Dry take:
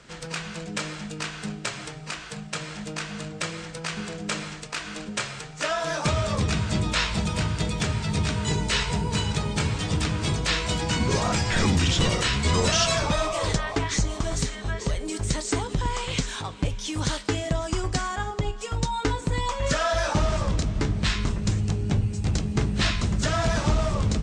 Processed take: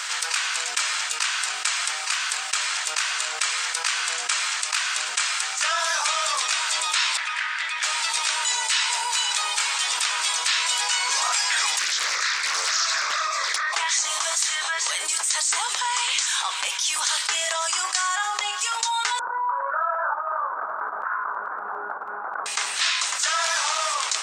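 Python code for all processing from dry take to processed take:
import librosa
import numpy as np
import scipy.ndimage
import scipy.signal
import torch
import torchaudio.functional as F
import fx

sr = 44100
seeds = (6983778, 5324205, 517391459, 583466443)

y = fx.chain(x, sr, fx.bandpass_q(hz=1800.0, q=3.0),
    fx.doppler_dist(depth_ms=0.12), at=(7.17, 7.83))
y = fx.chain(y, sr, fx.tilt_eq(slope=-2.0),
    fx.fixed_phaser(hz=3000.0, stages=6),
    fx.doppler_dist(depth_ms=0.74), at=(11.79, 13.73))
y = fx.chain(y, sr, fx.cheby1_lowpass(hz=1500.0, order=6),
    fx.over_compress(threshold_db=-26.0, ratio=-0.5), at=(19.19, 22.46))
y = scipy.signal.sosfilt(scipy.signal.butter(4, 960.0, 'highpass', fs=sr, output='sos'), y)
y = fx.high_shelf(y, sr, hz=7100.0, db=11.5)
y = fx.env_flatten(y, sr, amount_pct=70)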